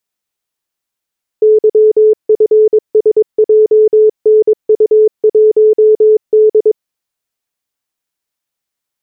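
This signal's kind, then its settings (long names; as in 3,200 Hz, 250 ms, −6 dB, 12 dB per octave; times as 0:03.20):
Morse code "YFSJNU1D" 22 words per minute 431 Hz −3.5 dBFS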